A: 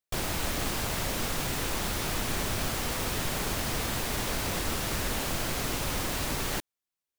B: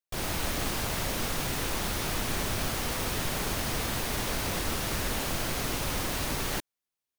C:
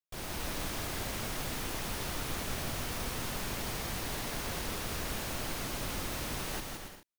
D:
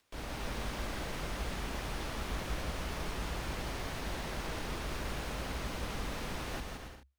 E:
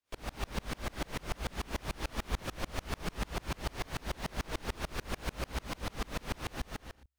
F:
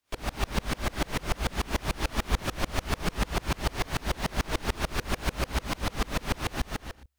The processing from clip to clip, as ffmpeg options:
-af "bandreject=f=7.5k:w=24,dynaudnorm=f=110:g=3:m=5.5dB,volume=-5.5dB"
-af "aecho=1:1:170|280.5|352.3|399|429.4:0.631|0.398|0.251|0.158|0.1,volume=-8dB"
-af "acompressor=mode=upward:threshold=-48dB:ratio=2.5,aemphasis=mode=reproduction:type=50kf,afreqshift=-68"
-af "aeval=exprs='val(0)*pow(10,-32*if(lt(mod(-6.8*n/s,1),2*abs(-6.8)/1000),1-mod(-6.8*n/s,1)/(2*abs(-6.8)/1000),(mod(-6.8*n/s,1)-2*abs(-6.8)/1000)/(1-2*abs(-6.8)/1000))/20)':c=same,volume=8dB"
-af "bandreject=f=500:w=12,volume=8dB"

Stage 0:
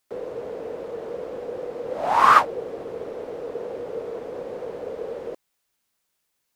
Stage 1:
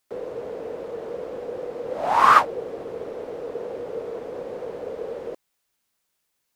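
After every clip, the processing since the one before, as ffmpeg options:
-af anull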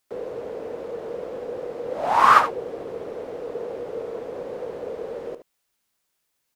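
-af "aecho=1:1:73:0.266"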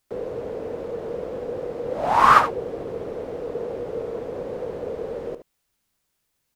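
-af "lowshelf=f=200:g=11"

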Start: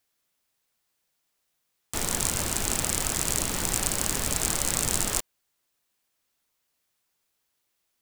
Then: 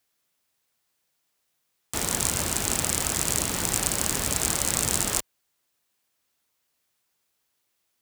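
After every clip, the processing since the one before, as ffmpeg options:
-af "highpass=47,volume=1.5dB"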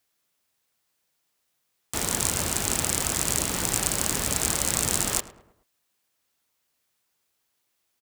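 -filter_complex "[0:a]asplit=2[a][b];[b]adelay=107,lowpass=f=1.9k:p=1,volume=-14dB,asplit=2[c][d];[d]adelay=107,lowpass=f=1.9k:p=1,volume=0.47,asplit=2[e][f];[f]adelay=107,lowpass=f=1.9k:p=1,volume=0.47,asplit=2[g][h];[h]adelay=107,lowpass=f=1.9k:p=1,volume=0.47[i];[a][c][e][g][i]amix=inputs=5:normalize=0"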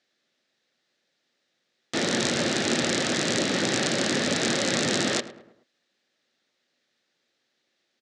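-af "highpass=f=130:w=0.5412,highpass=f=130:w=1.3066,equalizer=f=240:t=q:w=4:g=7,equalizer=f=350:t=q:w=4:g=6,equalizer=f=550:t=q:w=4:g=7,equalizer=f=1k:t=q:w=4:g=-8,equalizer=f=1.8k:t=q:w=4:g=6,equalizer=f=3.8k:t=q:w=4:g=5,lowpass=f=5.8k:w=0.5412,lowpass=f=5.8k:w=1.3066,volume=3dB"

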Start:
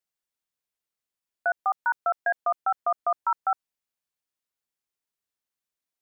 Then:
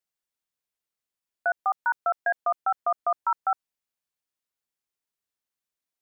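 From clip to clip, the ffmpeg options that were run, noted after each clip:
-af anull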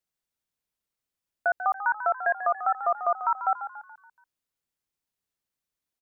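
-filter_complex "[0:a]lowshelf=f=260:g=7.5,asplit=2[a][b];[b]asplit=5[c][d][e][f][g];[c]adelay=142,afreqshift=37,volume=-11dB[h];[d]adelay=284,afreqshift=74,volume=-17.9dB[i];[e]adelay=426,afreqshift=111,volume=-24.9dB[j];[f]adelay=568,afreqshift=148,volume=-31.8dB[k];[g]adelay=710,afreqshift=185,volume=-38.7dB[l];[h][i][j][k][l]amix=inputs=5:normalize=0[m];[a][m]amix=inputs=2:normalize=0"

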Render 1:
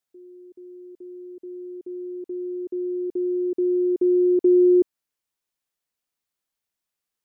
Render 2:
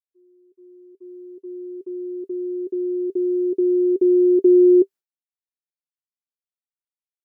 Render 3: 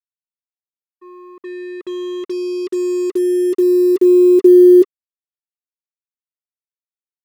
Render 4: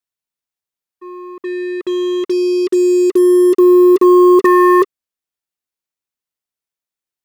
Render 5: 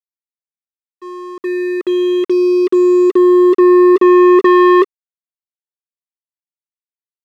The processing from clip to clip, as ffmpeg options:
-af "agate=range=-33dB:threshold=-36dB:ratio=3:detection=peak,equalizer=f=390:t=o:w=0.23:g=10,volume=-1.5dB"
-filter_complex "[0:a]asplit=2[a][b];[b]aeval=exprs='sgn(val(0))*max(abs(val(0))-0.0168,0)':c=same,volume=-9.5dB[c];[a][c]amix=inputs=2:normalize=0,acrusher=bits=5:mix=0:aa=0.5,volume=3.5dB"
-af "aeval=exprs='0.891*(cos(1*acos(clip(val(0)/0.891,-1,1)))-cos(1*PI/2))+0.398*(cos(5*acos(clip(val(0)/0.891,-1,1)))-cos(5*PI/2))+0.0398*(cos(7*acos(clip(val(0)/0.891,-1,1)))-cos(7*PI/2))':c=same,volume=-2dB"
-af "acontrast=87,highpass=180,lowpass=3.3k,aeval=exprs='sgn(val(0))*max(abs(val(0))-0.0158,0)':c=same,volume=-2.5dB"

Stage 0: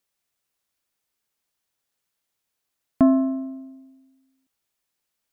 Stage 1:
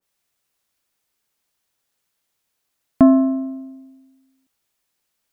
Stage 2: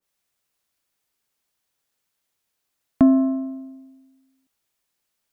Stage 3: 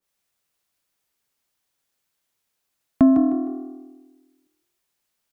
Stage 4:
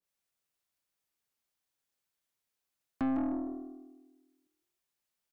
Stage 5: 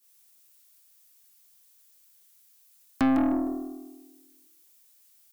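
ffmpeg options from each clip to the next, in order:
-af "adynamicequalizer=threshold=0.0126:dfrequency=1600:dqfactor=0.7:tfrequency=1600:tqfactor=0.7:attack=5:release=100:ratio=0.375:range=2:mode=cutabove:tftype=highshelf,volume=5dB"
-filter_complex "[0:a]acrossover=split=480|3000[a][b][c];[b]acompressor=threshold=-25dB:ratio=6[d];[a][d][c]amix=inputs=3:normalize=0,volume=-2.5dB"
-filter_complex "[0:a]asplit=4[a][b][c][d];[b]adelay=154,afreqshift=40,volume=-9.5dB[e];[c]adelay=308,afreqshift=80,volume=-19.7dB[f];[d]adelay=462,afreqshift=120,volume=-29.8dB[g];[a][e][f][g]amix=inputs=4:normalize=0"
-af "aeval=exprs='(tanh(8.91*val(0)+0.25)-tanh(0.25))/8.91':c=same,volume=-9dB"
-af "crystalizer=i=5:c=0,volume=8dB"

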